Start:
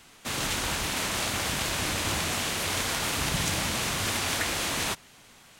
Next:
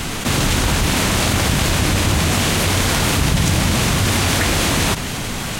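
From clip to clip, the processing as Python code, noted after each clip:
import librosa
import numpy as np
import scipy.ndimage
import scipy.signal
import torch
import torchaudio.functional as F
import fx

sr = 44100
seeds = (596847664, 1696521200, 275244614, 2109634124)

y = fx.low_shelf(x, sr, hz=310.0, db=11.5)
y = fx.env_flatten(y, sr, amount_pct=70)
y = y * 10.0 ** (3.5 / 20.0)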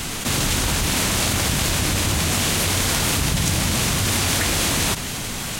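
y = fx.high_shelf(x, sr, hz=3800.0, db=7.0)
y = y * 10.0 ** (-5.5 / 20.0)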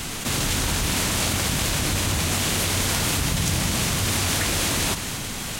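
y = x + 10.0 ** (-11.0 / 20.0) * np.pad(x, (int(214 * sr / 1000.0), 0))[:len(x)]
y = y * 10.0 ** (-3.0 / 20.0)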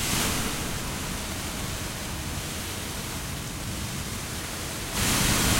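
y = fx.over_compress(x, sr, threshold_db=-29.0, ratio=-0.5)
y = fx.rev_plate(y, sr, seeds[0], rt60_s=4.5, hf_ratio=0.5, predelay_ms=0, drr_db=-5.0)
y = y * 10.0 ** (-4.0 / 20.0)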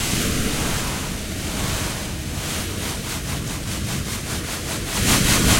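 y = fx.rotary_switch(x, sr, hz=1.0, then_hz=5.0, switch_at_s=2.22)
y = y * 10.0 ** (8.5 / 20.0)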